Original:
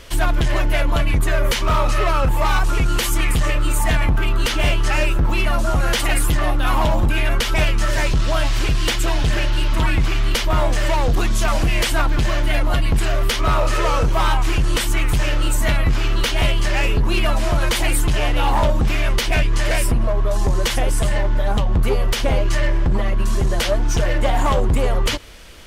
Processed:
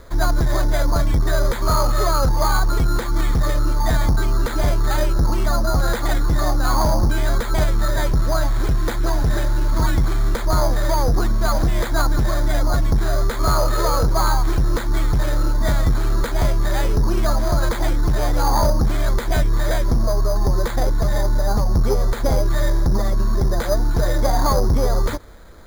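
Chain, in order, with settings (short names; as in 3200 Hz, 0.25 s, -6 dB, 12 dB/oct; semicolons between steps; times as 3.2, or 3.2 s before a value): LPF 1700 Hz 24 dB/oct; careless resampling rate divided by 8×, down filtered, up hold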